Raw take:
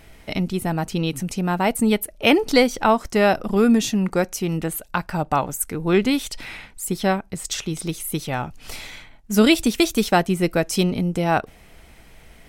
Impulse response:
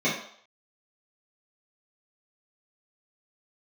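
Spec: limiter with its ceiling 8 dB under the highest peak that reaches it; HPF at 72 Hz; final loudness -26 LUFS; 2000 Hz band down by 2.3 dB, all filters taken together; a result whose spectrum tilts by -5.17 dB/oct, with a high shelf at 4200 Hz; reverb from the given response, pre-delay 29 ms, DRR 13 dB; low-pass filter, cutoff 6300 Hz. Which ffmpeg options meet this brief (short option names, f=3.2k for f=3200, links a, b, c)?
-filter_complex "[0:a]highpass=72,lowpass=6.3k,equalizer=f=2k:t=o:g=-4,highshelf=f=4.2k:g=4,alimiter=limit=-11.5dB:level=0:latency=1,asplit=2[a][b];[1:a]atrim=start_sample=2205,adelay=29[c];[b][c]afir=irnorm=-1:irlink=0,volume=-27.5dB[d];[a][d]amix=inputs=2:normalize=0,volume=-2.5dB"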